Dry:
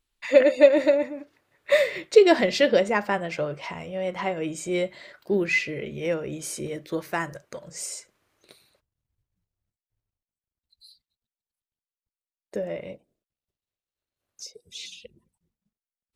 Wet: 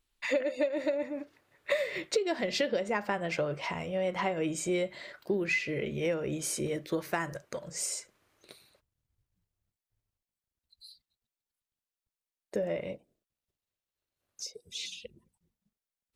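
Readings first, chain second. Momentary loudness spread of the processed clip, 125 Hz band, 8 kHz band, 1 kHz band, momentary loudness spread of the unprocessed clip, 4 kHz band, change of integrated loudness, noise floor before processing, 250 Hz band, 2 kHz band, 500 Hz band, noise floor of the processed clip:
12 LU, -2.5 dB, -0.5 dB, -6.0 dB, 22 LU, -5.0 dB, -9.0 dB, under -85 dBFS, -6.5 dB, -6.5 dB, -10.0 dB, under -85 dBFS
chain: compressor 12:1, threshold -26 dBFS, peak gain reduction 18 dB

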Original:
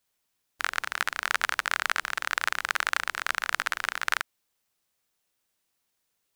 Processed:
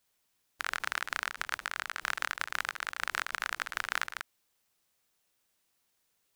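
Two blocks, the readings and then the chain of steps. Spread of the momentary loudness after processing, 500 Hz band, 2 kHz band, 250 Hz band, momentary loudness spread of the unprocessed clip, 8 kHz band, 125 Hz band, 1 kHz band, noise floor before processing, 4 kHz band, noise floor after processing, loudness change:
3 LU, -6.5 dB, -6.5 dB, -5.0 dB, 4 LU, -6.5 dB, n/a, -6.5 dB, -78 dBFS, -6.5 dB, -77 dBFS, -6.5 dB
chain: negative-ratio compressor -34 dBFS, ratio -1; gain -2.5 dB

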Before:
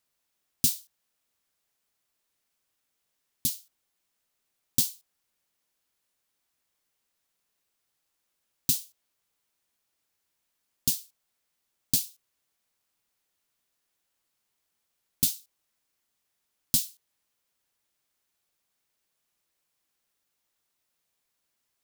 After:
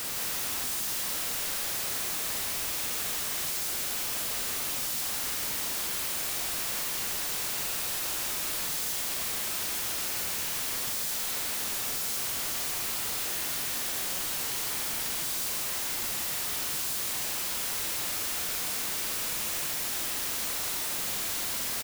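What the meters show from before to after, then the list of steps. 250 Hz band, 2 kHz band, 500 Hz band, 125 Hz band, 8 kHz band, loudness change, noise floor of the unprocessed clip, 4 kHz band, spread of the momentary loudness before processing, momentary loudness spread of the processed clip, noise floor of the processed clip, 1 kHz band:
+1.0 dB, +23.5 dB, +18.5 dB, -1.0 dB, +6.0 dB, -1.0 dB, -80 dBFS, +8.5 dB, 12 LU, 0 LU, -32 dBFS, n/a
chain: infinite clipping; doubler 46 ms -6 dB; echo 0.164 s -3 dB; gain +4.5 dB

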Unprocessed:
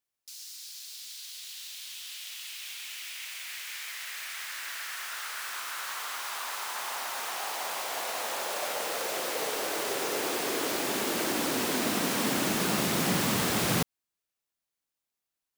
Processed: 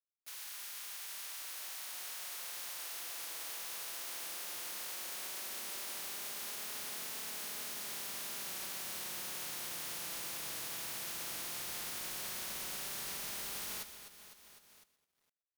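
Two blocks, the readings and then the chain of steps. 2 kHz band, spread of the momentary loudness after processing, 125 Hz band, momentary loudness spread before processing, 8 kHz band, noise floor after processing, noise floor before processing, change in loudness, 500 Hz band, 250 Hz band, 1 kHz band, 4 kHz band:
-12.5 dB, 4 LU, -22.0 dB, 13 LU, -6.5 dB, -80 dBFS, under -85 dBFS, -8.5 dB, -20.0 dB, -24.0 dB, -16.0 dB, -9.0 dB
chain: spectral limiter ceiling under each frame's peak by 29 dB; in parallel at -7.5 dB: wavefolder -28.5 dBFS; on the sum: flange 0.14 Hz, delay 4.6 ms, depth 1.5 ms, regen -30%; compressor 10:1, threshold -38 dBFS, peak gain reduction 11.5 dB; outdoor echo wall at 79 m, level -28 dB; companded quantiser 6-bit; notch 7500 Hz, Q 16; on a send: feedback echo 0.252 s, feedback 40%, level -13 dB; on the sum: upward compressor, threshold -47 dBFS; wow and flutter 26 cents; hard clip -38 dBFS, distortion -16 dB; lo-fi delay 0.124 s, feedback 35%, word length 12-bit, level -13.5 dB

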